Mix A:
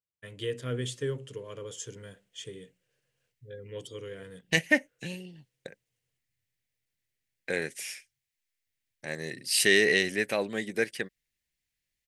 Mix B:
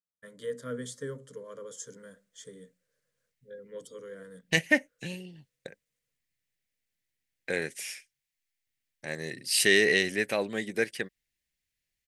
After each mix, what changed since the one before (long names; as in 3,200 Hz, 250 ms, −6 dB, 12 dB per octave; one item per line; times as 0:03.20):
first voice: add phaser with its sweep stopped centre 530 Hz, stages 8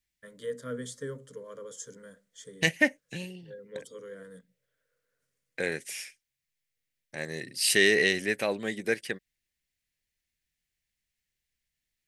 second voice: entry −1.90 s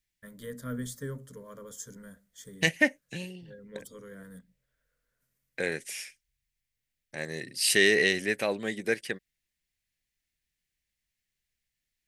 first voice: remove loudspeaker in its box 160–9,500 Hz, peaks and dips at 220 Hz −7 dB, 480 Hz +8 dB, 810 Hz −6 dB, 2,900 Hz +5 dB